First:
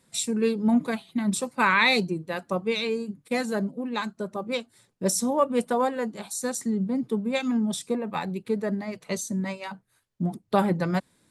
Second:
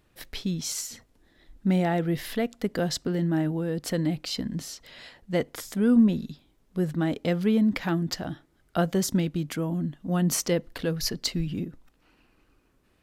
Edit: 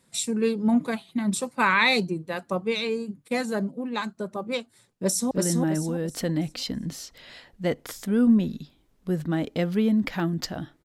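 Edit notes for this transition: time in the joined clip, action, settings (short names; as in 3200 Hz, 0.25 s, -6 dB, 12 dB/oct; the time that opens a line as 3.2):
first
4.86–5.31 echo throw 0.33 s, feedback 35%, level -2 dB
5.31 switch to second from 3 s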